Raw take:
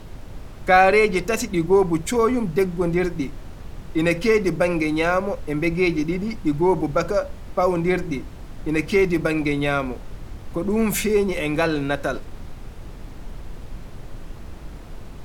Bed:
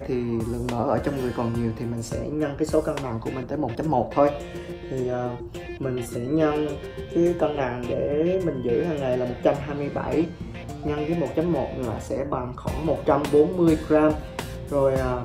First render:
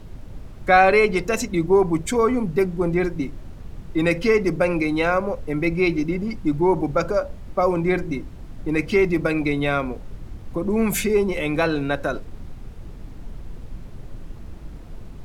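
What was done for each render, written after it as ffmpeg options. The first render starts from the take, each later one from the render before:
ffmpeg -i in.wav -af "afftdn=noise_reduction=6:noise_floor=-38" out.wav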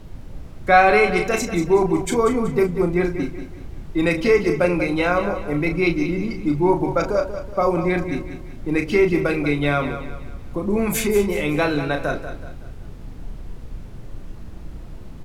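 ffmpeg -i in.wav -filter_complex "[0:a]asplit=2[link_01][link_02];[link_02]adelay=34,volume=-6.5dB[link_03];[link_01][link_03]amix=inputs=2:normalize=0,aecho=1:1:188|376|564|752:0.299|0.119|0.0478|0.0191" out.wav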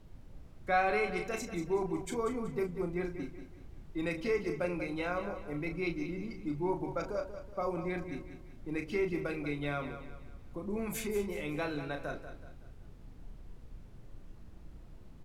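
ffmpeg -i in.wav -af "volume=-15.5dB" out.wav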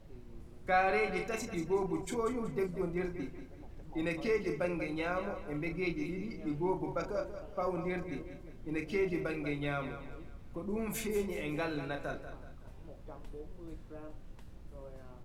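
ffmpeg -i in.wav -i bed.wav -filter_complex "[1:a]volume=-30.5dB[link_01];[0:a][link_01]amix=inputs=2:normalize=0" out.wav

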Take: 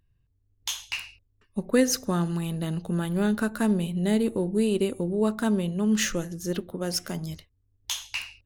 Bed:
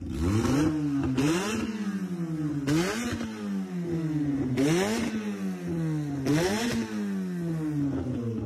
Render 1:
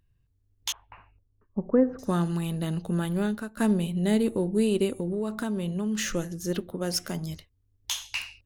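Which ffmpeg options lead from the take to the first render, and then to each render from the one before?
ffmpeg -i in.wav -filter_complex "[0:a]asettb=1/sr,asplit=3[link_01][link_02][link_03];[link_01]atrim=end=0.724[link_04];[link_02]atrim=start=0.72:end=1.99,asetpts=PTS-STARTPTS,afade=type=in:duration=0.004:curve=qsin,afade=type=out:start_time=1.266:duration=0.004:curve=qsin,lowpass=frequency=1200:width=0.5412,lowpass=frequency=1200:width=1.3066[link_05];[link_03]atrim=start=1.986[link_06];[link_04][link_05]acrossfade=duration=0.004:curve1=hsin:curve2=qsin[link_07];[link_07][link_06]acrossfade=duration=0.004:curve1=qsin:curve2=hsin,asettb=1/sr,asplit=3[link_08][link_09][link_10];[link_08]atrim=end=4.994[link_11];[link_09]atrim=start=4.99:end=6.1,asetpts=PTS-STARTPTS,afade=type=in:duration=0.004:curve=qsin,afade=type=out:start_time=1.106:duration=0.004:curve=qsin,acompressor=threshold=-25dB:ratio=6:attack=3.2:release=140:knee=1:detection=peak[link_12];[link_10]atrim=start=6.096[link_13];[link_11][link_12]acrossfade=duration=0.004:curve1=hsin:curve2=qsin[link_14];[link_14][link_13]acrossfade=duration=0.004:curve1=qsin:curve2=hsin,asplit=2[link_15][link_16];[link_15]atrim=end=3.57,asetpts=PTS-STARTPTS,afade=type=out:start_time=3.1:duration=0.47:silence=0.1[link_17];[link_16]atrim=start=3.57,asetpts=PTS-STARTPTS,afade=type=in:duration=0.004:curve=hsin:silence=0.1[link_18];[link_17][link_18]concat=n=2:v=0:a=1" out.wav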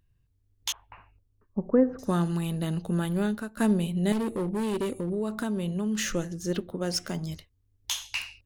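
ffmpeg -i in.wav -filter_complex "[0:a]asettb=1/sr,asplit=3[link_01][link_02][link_03];[link_01]atrim=end=4.124[link_04];[link_02]atrim=start=4.12:end=5.1,asetpts=PTS-STARTPTS,afade=type=in:duration=0.004:curve=qsin,afade=type=out:start_time=0.976:duration=0.004:curve=qsin,asoftclip=type=hard:threshold=-25.5dB[link_05];[link_03]atrim=start=5.096[link_06];[link_04][link_05]acrossfade=duration=0.004:curve1=hsin:curve2=qsin[link_07];[link_07][link_06]acrossfade=duration=0.004:curve1=qsin:curve2=hsin,asettb=1/sr,asplit=3[link_08][link_09][link_10];[link_08]atrim=end=6.134[link_11];[link_09]atrim=start=6.13:end=7.32,asetpts=PTS-STARTPTS,afade=type=in:duration=0.004:curve=qsin,afade=type=out:start_time=1.186:duration=0.004:curve=qsin,equalizer=frequency=12000:width=1.9:gain=-11[link_12];[link_10]atrim=start=7.316[link_13];[link_11][link_12]acrossfade=duration=0.004:curve1=hsin:curve2=qsin[link_14];[link_14][link_13]acrossfade=duration=0.004:curve1=qsin:curve2=hsin" out.wav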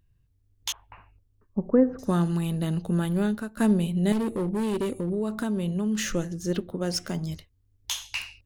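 ffmpeg -i in.wav -af "lowshelf=frequency=370:gain=3" out.wav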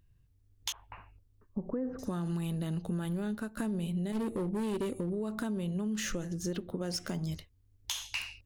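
ffmpeg -i in.wav -af "alimiter=limit=-19dB:level=0:latency=1:release=39,acompressor=threshold=-32dB:ratio=4" out.wav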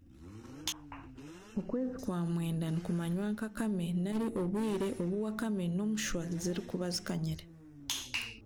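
ffmpeg -i in.wav -i bed.wav -filter_complex "[1:a]volume=-24.5dB[link_01];[0:a][link_01]amix=inputs=2:normalize=0" out.wav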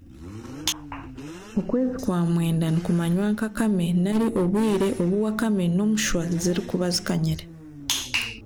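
ffmpeg -i in.wav -af "volume=11.5dB" out.wav

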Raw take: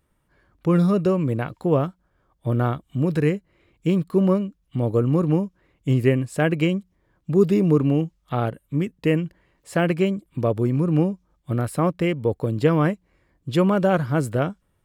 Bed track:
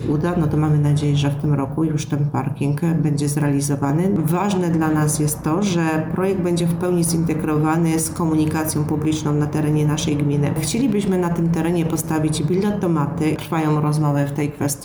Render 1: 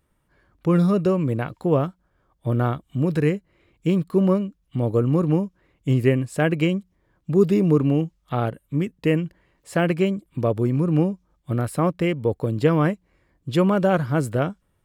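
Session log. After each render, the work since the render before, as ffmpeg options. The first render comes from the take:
ffmpeg -i in.wav -af anull out.wav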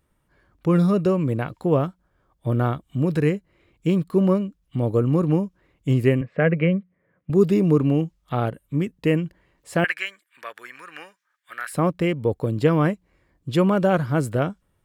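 ffmpeg -i in.wav -filter_complex "[0:a]asettb=1/sr,asplit=3[link_01][link_02][link_03];[link_01]atrim=end=6.214[link_04];[link_02]atrim=start=6.21:end=7.3,asetpts=PTS-STARTPTS,afade=type=in:duration=0.004:curve=qsin,afade=type=out:start_time=1.086:duration=0.004:curve=qsin,highpass=150,equalizer=frequency=170:width_type=q:width=4:gain=6,equalizer=frequency=330:width_type=q:width=4:gain=-7,equalizer=frequency=510:width_type=q:width=4:gain=7,equalizer=frequency=880:width_type=q:width=4:gain=-9,equalizer=frequency=2000:width_type=q:width=4:gain=6,lowpass=frequency=2400:width=0.5412,lowpass=frequency=2400:width=1.3066[link_05];[link_03]atrim=start=7.296[link_06];[link_04][link_05]acrossfade=duration=0.004:curve1=hsin:curve2=qsin[link_07];[link_07][link_06]acrossfade=duration=0.004:curve1=qsin:curve2=hsin,asettb=1/sr,asplit=3[link_08][link_09][link_10];[link_08]atrim=end=9.844[link_11];[link_09]atrim=start=9.84:end=11.73,asetpts=PTS-STARTPTS,afade=type=in:duration=0.004:curve=qsin,afade=type=out:start_time=1.886:duration=0.004:curve=qsin,highpass=frequency=1700:width_type=q:width=5[link_12];[link_10]atrim=start=11.726[link_13];[link_11][link_12]acrossfade=duration=0.004:curve1=hsin:curve2=qsin[link_14];[link_14][link_13]acrossfade=duration=0.004:curve1=qsin:curve2=hsin" out.wav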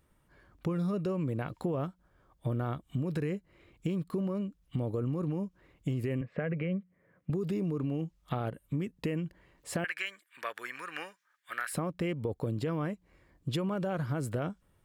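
ffmpeg -i in.wav -af "alimiter=limit=-16dB:level=0:latency=1:release=40,acompressor=threshold=-31dB:ratio=4" out.wav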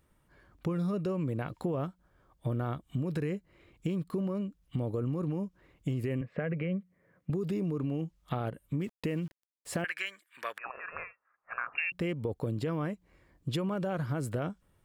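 ffmpeg -i in.wav -filter_complex "[0:a]asettb=1/sr,asplit=3[link_01][link_02][link_03];[link_01]atrim=end=8.814[link_04];[link_02]atrim=start=8.81:end=9.82,asetpts=PTS-STARTPTS,afade=type=in:duration=0.004:curve=qsin,afade=type=out:start_time=1.006:duration=0.004:curve=qsin,aeval=exprs='val(0)*gte(abs(val(0)),0.00251)':channel_layout=same[link_05];[link_03]atrim=start=9.816[link_06];[link_04][link_05]acrossfade=duration=0.004:curve1=hsin:curve2=qsin[link_07];[link_07][link_06]acrossfade=duration=0.004:curve1=qsin:curve2=hsin,asettb=1/sr,asplit=3[link_08][link_09][link_10];[link_08]atrim=end=10.584[link_11];[link_09]atrim=start=10.58:end=11.92,asetpts=PTS-STARTPTS,afade=type=in:duration=0.004:curve=qsin,afade=type=out:start_time=1.336:duration=0.004:curve=qsin,lowpass=frequency=2500:width_type=q:width=0.5098,lowpass=frequency=2500:width_type=q:width=0.6013,lowpass=frequency=2500:width_type=q:width=0.9,lowpass=frequency=2500:width_type=q:width=2.563,afreqshift=-2900[link_12];[link_10]atrim=start=11.916[link_13];[link_11][link_12]acrossfade=duration=0.004:curve1=hsin:curve2=qsin[link_14];[link_14][link_13]acrossfade=duration=0.004:curve1=qsin:curve2=hsin" out.wav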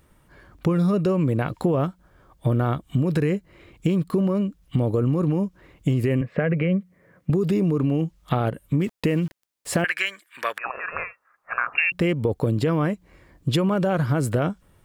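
ffmpeg -i in.wav -af "volume=11dB" out.wav

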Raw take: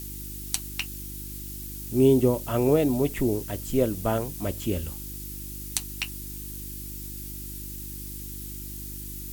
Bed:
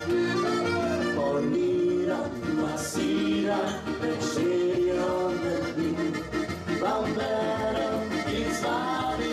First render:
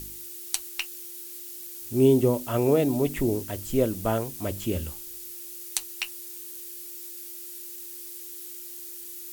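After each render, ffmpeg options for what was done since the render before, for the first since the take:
ffmpeg -i in.wav -af "bandreject=frequency=50:width_type=h:width=4,bandreject=frequency=100:width_type=h:width=4,bandreject=frequency=150:width_type=h:width=4,bandreject=frequency=200:width_type=h:width=4,bandreject=frequency=250:width_type=h:width=4,bandreject=frequency=300:width_type=h:width=4" out.wav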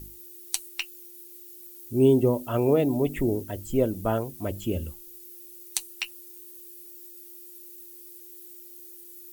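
ffmpeg -i in.wav -af "afftdn=noise_reduction=12:noise_floor=-41" out.wav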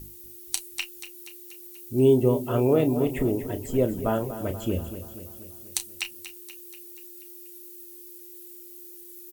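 ffmpeg -i in.wav -filter_complex "[0:a]asplit=2[link_01][link_02];[link_02]adelay=32,volume=-10.5dB[link_03];[link_01][link_03]amix=inputs=2:normalize=0,asplit=2[link_04][link_05];[link_05]aecho=0:1:240|480|720|960|1200|1440:0.237|0.138|0.0798|0.0463|0.0268|0.0156[link_06];[link_04][link_06]amix=inputs=2:normalize=0" out.wav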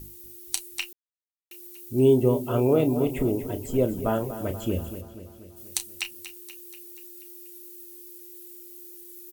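ffmpeg -i in.wav -filter_complex "[0:a]asettb=1/sr,asplit=3[link_01][link_02][link_03];[link_01]atrim=end=2.464[link_04];[link_02]atrim=start=2.46:end=4.06,asetpts=PTS-STARTPTS,afade=type=in:duration=0.004:curve=qsin,afade=type=out:start_time=1.596:duration=0.004:curve=qsin,bandreject=frequency=1800:width=5.1[link_05];[link_03]atrim=start=4.056[link_06];[link_04][link_05]acrossfade=duration=0.004:curve1=hsin:curve2=qsin[link_07];[link_07][link_06]acrossfade=duration=0.004:curve1=qsin:curve2=hsin,asplit=3[link_08][link_09][link_10];[link_08]afade=type=out:start_time=5:duration=0.02[link_11];[link_09]lowpass=frequency=2900:poles=1,afade=type=in:start_time=5:duration=0.02,afade=type=out:start_time=5.56:duration=0.02[link_12];[link_10]afade=type=in:start_time=5.56:duration=0.02[link_13];[link_11][link_12][link_13]amix=inputs=3:normalize=0,asplit=3[link_14][link_15][link_16];[link_14]atrim=end=0.93,asetpts=PTS-STARTPTS,afade=type=out:start_time=0.926:duration=0.004:curve=hsin[link_17];[link_15]atrim=start=0.93:end=1.51,asetpts=PTS-STARTPTS,volume=0[link_18];[link_16]atrim=start=1.51,asetpts=PTS-STARTPTS,afade=type=in:duration=0.004:curve=hsin[link_19];[link_17][link_18][link_19]concat=n=3:v=0:a=1" out.wav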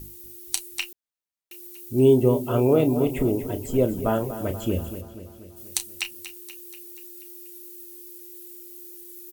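ffmpeg -i in.wav -af "volume=2dB" out.wav

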